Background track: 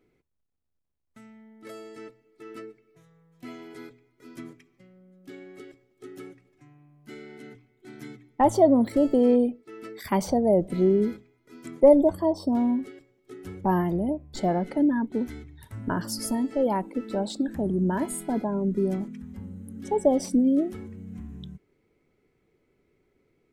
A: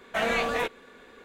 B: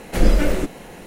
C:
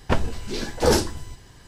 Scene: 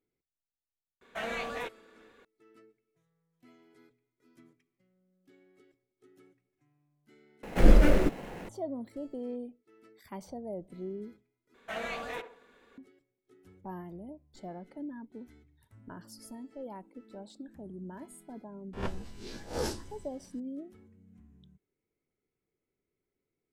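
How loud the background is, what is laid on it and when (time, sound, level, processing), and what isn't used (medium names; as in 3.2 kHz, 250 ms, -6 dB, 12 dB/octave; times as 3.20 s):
background track -18.5 dB
1.01 s: add A -9.5 dB
7.43 s: replace with B -3 dB + median filter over 9 samples
11.54 s: replace with A -11 dB + band-passed feedback delay 68 ms, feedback 43%, band-pass 670 Hz, level -8.5 dB
18.73 s: add C -16.5 dB + reverse spectral sustain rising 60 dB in 0.35 s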